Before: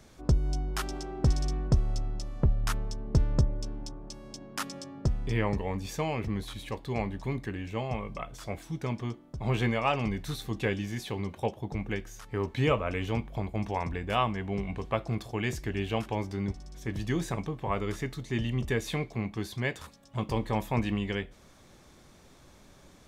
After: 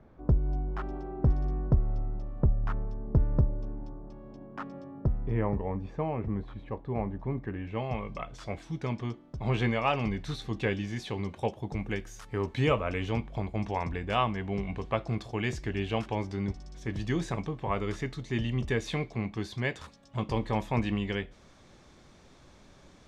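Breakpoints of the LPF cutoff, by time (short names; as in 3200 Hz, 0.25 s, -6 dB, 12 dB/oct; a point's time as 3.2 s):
7.34 s 1200 Hz
7.78 s 2800 Hz
8.03 s 5500 Hz
10.8 s 5500 Hz
11.81 s 11000 Hz
12.32 s 11000 Hz
13.14 s 6500 Hz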